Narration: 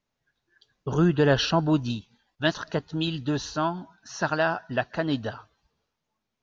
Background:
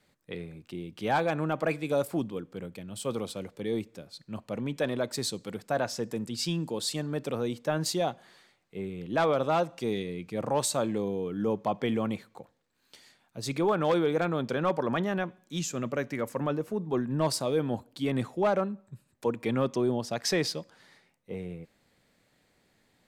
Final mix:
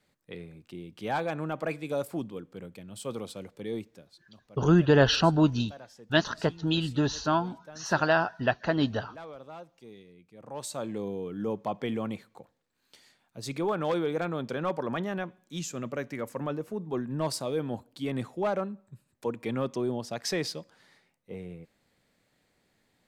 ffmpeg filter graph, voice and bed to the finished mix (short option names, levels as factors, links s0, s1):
-filter_complex "[0:a]adelay=3700,volume=1.06[s0];[1:a]volume=3.98,afade=t=out:st=3.75:d=0.57:silence=0.177828,afade=t=in:st=10.39:d=0.68:silence=0.16788[s1];[s0][s1]amix=inputs=2:normalize=0"